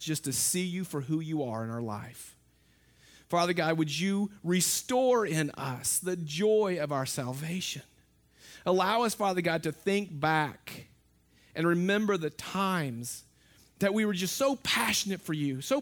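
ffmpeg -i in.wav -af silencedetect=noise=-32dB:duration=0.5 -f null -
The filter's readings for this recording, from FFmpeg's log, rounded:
silence_start: 2.02
silence_end: 3.33 | silence_duration: 1.30
silence_start: 7.77
silence_end: 8.66 | silence_duration: 0.90
silence_start: 10.72
silence_end: 11.57 | silence_duration: 0.85
silence_start: 13.14
silence_end: 13.81 | silence_duration: 0.67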